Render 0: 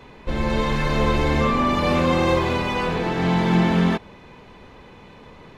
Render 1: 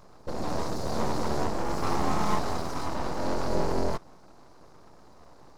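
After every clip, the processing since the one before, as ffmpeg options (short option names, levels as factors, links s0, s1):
-af "lowshelf=f=260:g=-9.5,afftfilt=real='re*(1-between(b*sr/4096,830,4200))':imag='im*(1-between(b*sr/4096,830,4200))':win_size=4096:overlap=0.75,aeval=exprs='abs(val(0))':c=same"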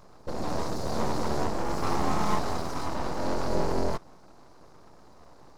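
-af anull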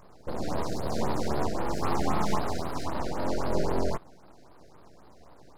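-af "afftfilt=real='re*(1-between(b*sr/1024,960*pow(7500/960,0.5+0.5*sin(2*PI*3.8*pts/sr))/1.41,960*pow(7500/960,0.5+0.5*sin(2*PI*3.8*pts/sr))*1.41))':imag='im*(1-between(b*sr/1024,960*pow(7500/960,0.5+0.5*sin(2*PI*3.8*pts/sr))/1.41,960*pow(7500/960,0.5+0.5*sin(2*PI*3.8*pts/sr))*1.41))':win_size=1024:overlap=0.75"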